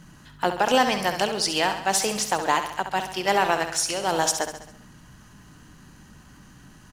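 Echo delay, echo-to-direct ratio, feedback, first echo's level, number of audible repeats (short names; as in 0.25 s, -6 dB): 67 ms, -7.5 dB, 55%, -9.0 dB, 6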